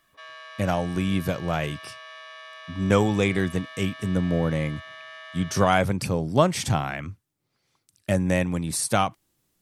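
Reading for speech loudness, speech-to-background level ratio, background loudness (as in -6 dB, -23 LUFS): -25.0 LUFS, 16.5 dB, -41.5 LUFS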